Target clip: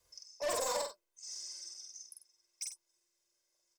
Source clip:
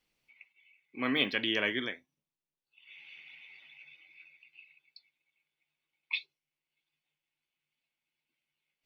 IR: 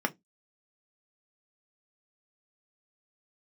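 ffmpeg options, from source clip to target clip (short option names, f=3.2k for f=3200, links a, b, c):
-filter_complex "[0:a]aecho=1:1:4.5:0.64,acrossover=split=260|440|3600[a][b][c][d];[c]acompressor=threshold=-45dB:ratio=6[e];[a][b][e][d]amix=inputs=4:normalize=0,asoftclip=type=tanh:threshold=-37dB,aecho=1:1:107.9|221.6:0.794|0.316,asetrate=103194,aresample=44100,volume=4dB"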